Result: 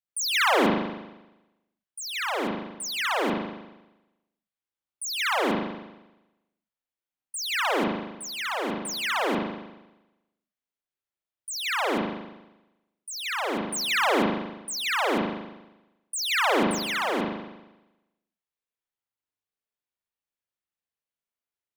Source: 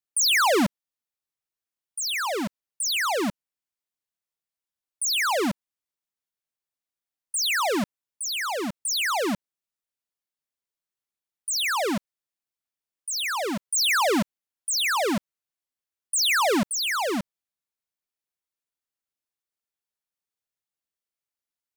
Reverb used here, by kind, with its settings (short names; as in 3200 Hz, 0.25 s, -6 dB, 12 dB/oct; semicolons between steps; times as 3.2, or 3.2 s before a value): spring tank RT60 1 s, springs 39 ms, chirp 30 ms, DRR -5.5 dB; gain -7 dB